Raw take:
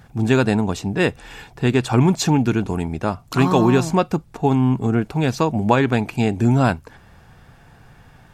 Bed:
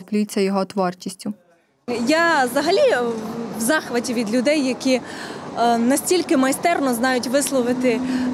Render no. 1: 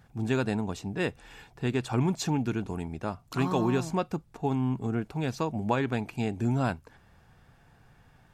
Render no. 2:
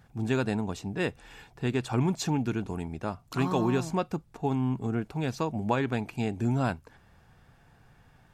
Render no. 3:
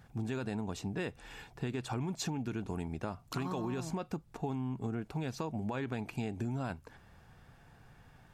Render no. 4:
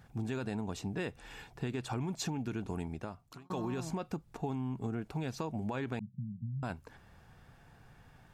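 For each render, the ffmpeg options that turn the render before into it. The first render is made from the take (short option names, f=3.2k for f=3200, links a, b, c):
-af "volume=-11dB"
-af anull
-af "alimiter=limit=-21dB:level=0:latency=1:release=23,acompressor=threshold=-33dB:ratio=6"
-filter_complex "[0:a]asettb=1/sr,asplit=3[a][b][c];[a]atrim=end=5.994[d];[b]atrim=start=5.99:end=6.63,asetpts=PTS-STARTPTS,afade=t=in:d=0.004:c=qsin,afade=t=out:st=0.636:d=0.004:c=qsin,asuperpass=centerf=150:order=12:qfactor=1.3[e];[c]atrim=start=6.626[f];[d][e]acrossfade=d=0.004:c1=hsin:c2=qsin[g];[g][f]acrossfade=d=0.004:c1=qsin:c2=hsin,asplit=2[h][i];[h]atrim=end=3.5,asetpts=PTS-STARTPTS,afade=t=out:st=2.83:d=0.67[j];[i]atrim=start=3.5,asetpts=PTS-STARTPTS,afade=t=in:d=0.004:c=hsin[k];[j][k]concat=n=2:v=0:a=1"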